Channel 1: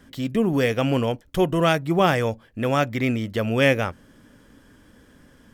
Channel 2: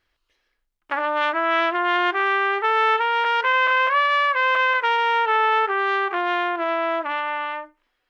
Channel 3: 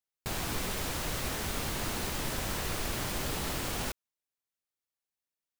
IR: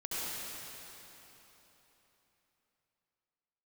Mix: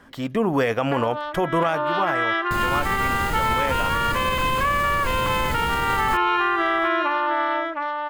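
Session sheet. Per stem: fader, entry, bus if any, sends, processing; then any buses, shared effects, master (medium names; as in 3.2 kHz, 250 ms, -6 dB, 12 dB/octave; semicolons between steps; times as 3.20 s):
1.71 s -3.5 dB -> 1.91 s -13.5 dB, 0.00 s, no send, no echo send, peaking EQ 1 kHz +13.5 dB 2 oct
+1.5 dB, 0.00 s, no send, echo send -5.5 dB, comb 3.6 ms, depth 83%; auto duck -15 dB, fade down 1.55 s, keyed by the first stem
+1.0 dB, 2.25 s, no send, echo send -21.5 dB, bass shelf 450 Hz +9.5 dB; band-stop 5.7 kHz, Q 9.1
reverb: none
echo: delay 709 ms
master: peak limiter -12 dBFS, peak gain reduction 11.5 dB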